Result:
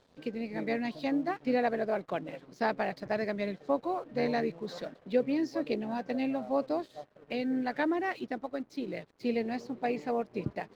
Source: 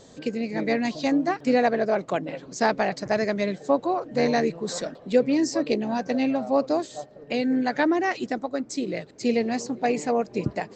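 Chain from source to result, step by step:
low-pass filter 4,400 Hz 24 dB per octave
dead-zone distortion −51 dBFS
level −7.5 dB

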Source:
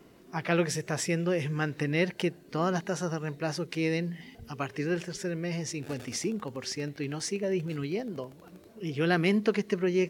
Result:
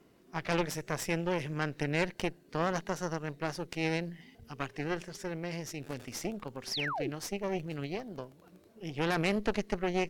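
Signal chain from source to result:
harmonic generator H 6 −11 dB, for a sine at −10.5 dBFS
sound drawn into the spectrogram fall, 0:06.71–0:07.10, 270–6,000 Hz −28 dBFS
level −7 dB

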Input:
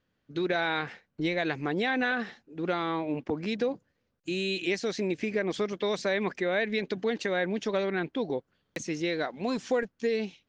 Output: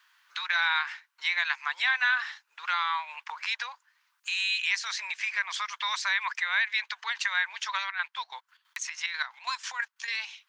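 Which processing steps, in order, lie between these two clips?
Chebyshev high-pass filter 950 Hz, order 5
0:07.83–0:10.08: square-wave tremolo 6.1 Hz, depth 65%, duty 50%
multiband upward and downward compressor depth 40%
level +7 dB

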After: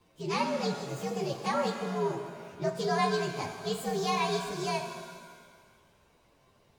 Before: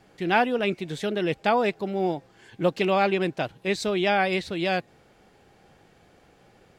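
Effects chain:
partials spread apart or drawn together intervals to 124%
reverb with rising layers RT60 1.7 s, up +7 semitones, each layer −8 dB, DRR 5.5 dB
level −5 dB

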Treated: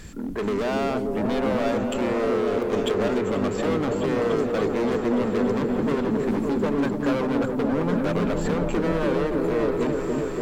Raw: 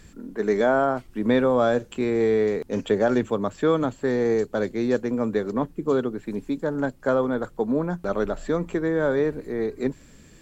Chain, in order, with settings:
downward compressor, threshold −24 dBFS, peak gain reduction 8.5 dB
gain into a clipping stage and back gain 31.5 dB
echo whose low-pass opens from repeat to repeat 287 ms, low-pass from 400 Hz, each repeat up 1 octave, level 0 dB
level +7.5 dB

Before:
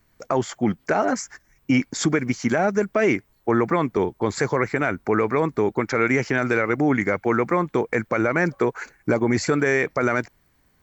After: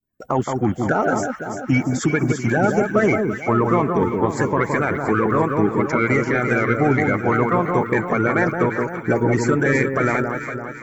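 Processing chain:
spectral magnitudes quantised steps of 30 dB
parametric band 4,300 Hz −11.5 dB 1.1 octaves
in parallel at −7 dB: soft clipping −16.5 dBFS, distortion −14 dB
on the sum: downward expander −47 dBFS
delay that swaps between a low-pass and a high-pass 170 ms, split 1,400 Hz, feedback 71%, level −4 dB

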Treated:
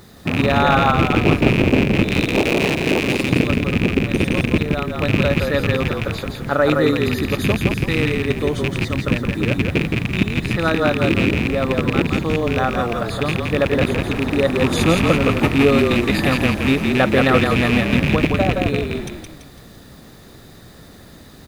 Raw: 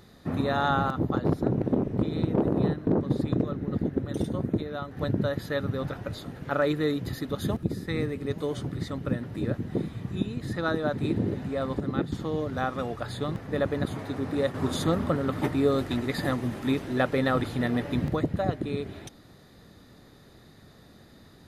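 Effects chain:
loose part that buzzes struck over −29 dBFS, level −19 dBFS
0:02.03–0:03.30: bass and treble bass −10 dB, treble +9 dB
bit reduction 10 bits
echo with shifted repeats 168 ms, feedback 41%, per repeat −36 Hz, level −3.5 dB
level +8.5 dB

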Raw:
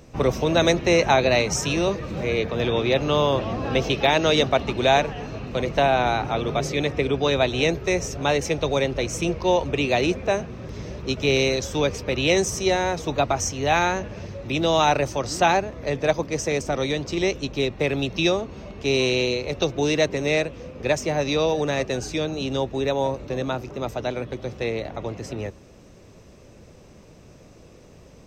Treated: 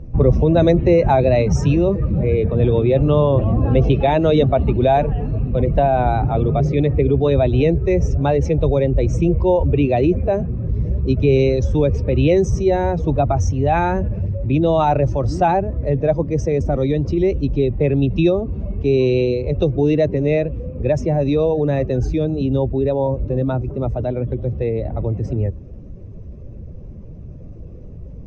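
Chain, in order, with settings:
expanding power law on the bin magnitudes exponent 1.5
RIAA equalisation playback
level +1.5 dB

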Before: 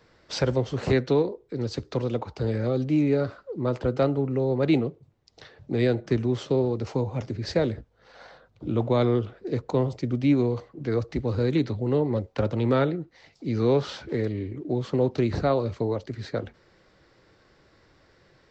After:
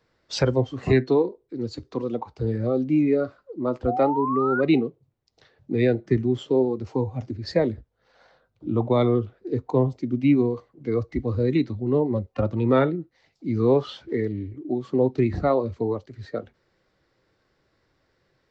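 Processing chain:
tuned comb filter 130 Hz, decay 0.22 s, harmonics all, mix 30%
noise reduction from a noise print of the clip's start 12 dB
sound drawn into the spectrogram rise, 0:03.87–0:04.61, 680–1,500 Hz −32 dBFS
level +5 dB

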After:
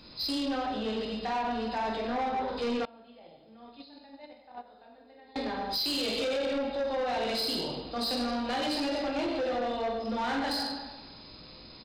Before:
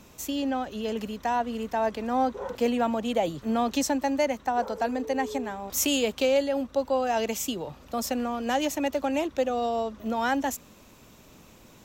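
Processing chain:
hearing-aid frequency compression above 3,500 Hz 4 to 1
high-shelf EQ 4,200 Hz +9 dB
far-end echo of a speakerphone 200 ms, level −20 dB
dense smooth reverb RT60 1.2 s, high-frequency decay 0.8×, pre-delay 0 ms, DRR −3 dB
brickwall limiter −13 dBFS, peak gain reduction 9 dB
0:02.85–0:05.36: noise gate −17 dBFS, range −26 dB
soft clipping −22 dBFS, distortion −12 dB
level −4.5 dB

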